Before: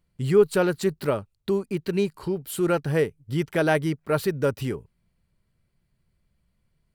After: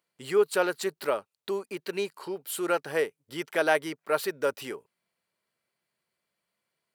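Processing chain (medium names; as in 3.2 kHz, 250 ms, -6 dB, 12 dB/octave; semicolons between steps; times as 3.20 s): high-pass 510 Hz 12 dB/octave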